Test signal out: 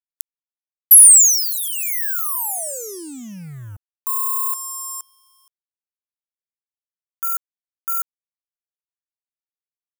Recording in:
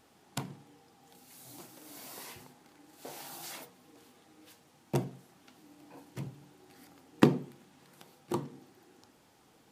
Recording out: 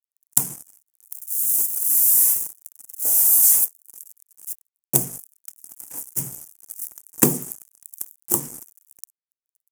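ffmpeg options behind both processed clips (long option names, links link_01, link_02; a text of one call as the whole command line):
ffmpeg -i in.wav -af "acrusher=bits=7:mix=0:aa=0.5,aexciter=amount=15.4:drive=9:freq=6400,acontrast=21,volume=-1dB" out.wav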